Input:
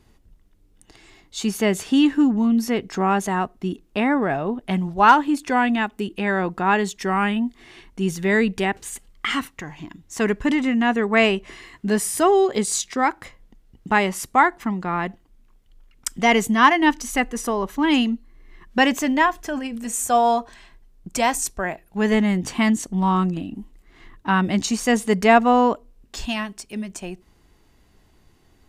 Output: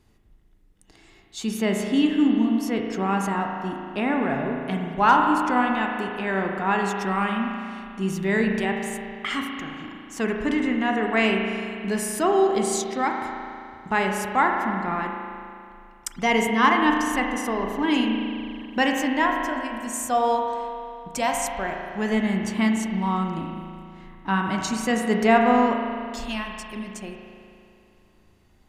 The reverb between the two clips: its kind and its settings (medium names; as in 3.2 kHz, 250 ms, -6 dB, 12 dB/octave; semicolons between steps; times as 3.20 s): spring tank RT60 2.5 s, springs 36 ms, chirp 80 ms, DRR 1.5 dB; trim -5 dB